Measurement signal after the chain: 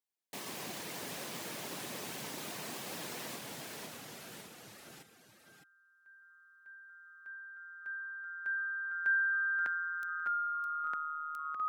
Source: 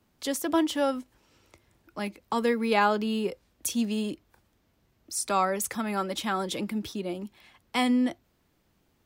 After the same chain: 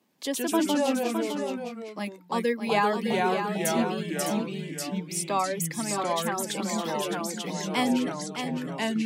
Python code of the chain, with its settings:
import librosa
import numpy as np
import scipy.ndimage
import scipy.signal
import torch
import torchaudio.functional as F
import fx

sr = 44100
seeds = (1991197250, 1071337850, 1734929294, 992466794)

p1 = scipy.signal.sosfilt(scipy.signal.butter(4, 170.0, 'highpass', fs=sr, output='sos'), x)
p2 = fx.dereverb_blind(p1, sr, rt60_s=1.5)
p3 = fx.notch(p2, sr, hz=1400.0, q=5.7)
p4 = fx.echo_pitch(p3, sr, ms=91, semitones=-2, count=3, db_per_echo=-3.0)
y = p4 + fx.echo_single(p4, sr, ms=610, db=-7.5, dry=0)